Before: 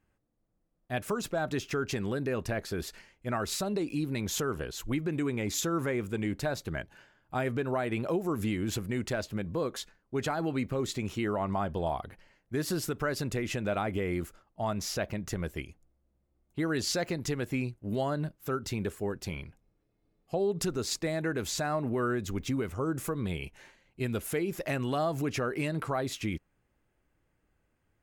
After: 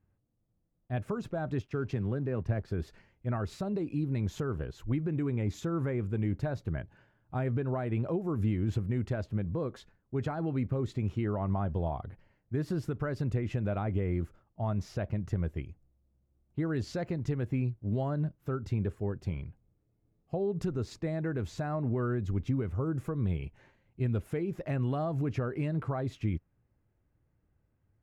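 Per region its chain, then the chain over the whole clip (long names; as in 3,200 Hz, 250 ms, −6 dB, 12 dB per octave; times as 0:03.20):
0:01.62–0:02.68: high-shelf EQ 6,300 Hz −6 dB + slack as between gear wheels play −48 dBFS + multiband upward and downward expander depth 40%
whole clip: low-pass filter 1,200 Hz 6 dB per octave; parametric band 100 Hz +10.5 dB 1.6 octaves; level −3.5 dB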